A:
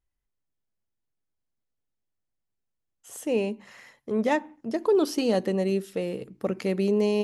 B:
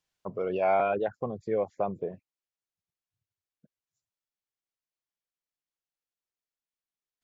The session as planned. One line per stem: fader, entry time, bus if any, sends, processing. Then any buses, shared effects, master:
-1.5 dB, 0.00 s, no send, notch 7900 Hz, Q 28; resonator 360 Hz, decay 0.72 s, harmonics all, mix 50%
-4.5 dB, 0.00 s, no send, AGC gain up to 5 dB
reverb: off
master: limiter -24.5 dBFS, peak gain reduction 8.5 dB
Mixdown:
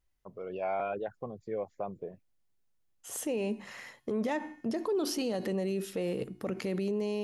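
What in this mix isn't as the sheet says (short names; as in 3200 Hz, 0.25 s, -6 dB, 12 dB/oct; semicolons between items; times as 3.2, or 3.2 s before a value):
stem A -1.5 dB -> +9.0 dB; stem B -4.5 dB -> -12.0 dB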